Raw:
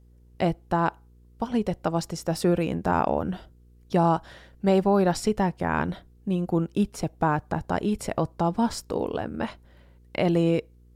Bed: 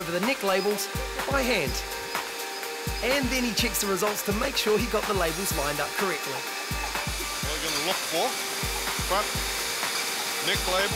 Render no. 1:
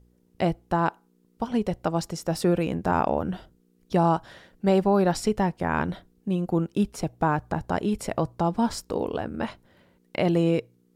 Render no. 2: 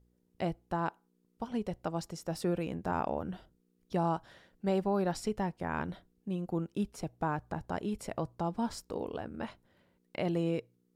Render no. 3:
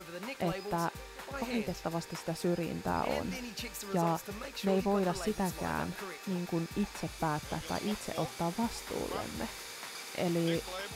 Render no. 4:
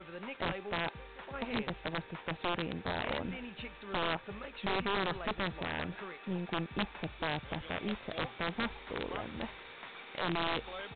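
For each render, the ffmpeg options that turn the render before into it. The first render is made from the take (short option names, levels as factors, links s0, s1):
-af "bandreject=f=60:t=h:w=4,bandreject=f=120:t=h:w=4"
-af "volume=0.335"
-filter_complex "[1:a]volume=0.168[s0];[0:a][s0]amix=inputs=2:normalize=0"
-af "aeval=exprs='(tanh(12.6*val(0)+0.5)-tanh(0.5))/12.6':c=same,aresample=8000,aeval=exprs='(mod(17.8*val(0)+1,2)-1)/17.8':c=same,aresample=44100"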